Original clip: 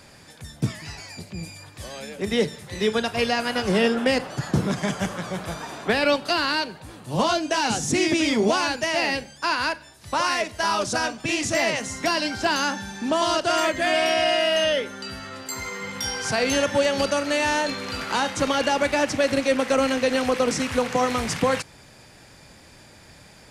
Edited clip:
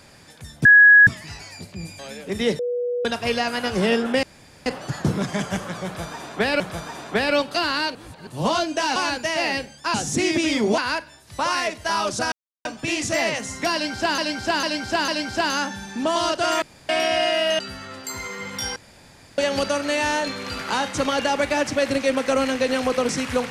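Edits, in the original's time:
0:00.65: insert tone 1,670 Hz −7 dBFS 0.42 s
0:01.57–0:01.91: remove
0:02.51–0:02.97: beep over 487 Hz −21.5 dBFS
0:04.15: splice in room tone 0.43 s
0:05.34–0:06.09: repeat, 2 plays
0:06.69–0:07.01: reverse
0:07.70–0:08.54: move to 0:09.52
0:11.06: splice in silence 0.33 s
0:12.14–0:12.59: repeat, 4 plays
0:13.68–0:13.95: fill with room tone
0:14.65–0:15.01: remove
0:16.18–0:16.80: fill with room tone

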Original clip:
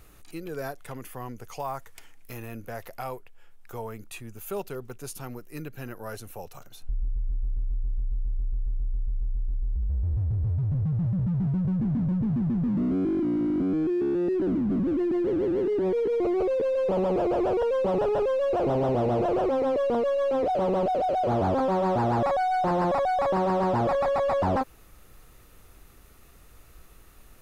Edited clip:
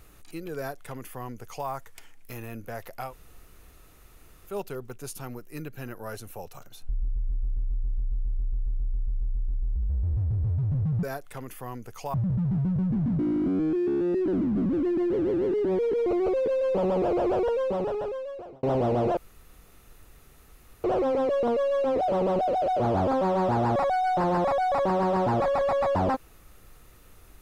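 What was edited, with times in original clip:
0:00.57–0:01.68: duplicate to 0:11.03
0:03.09–0:04.51: fill with room tone, crossfade 0.10 s
0:12.08–0:13.33: remove
0:17.55–0:18.77: fade out
0:19.31: splice in room tone 1.67 s

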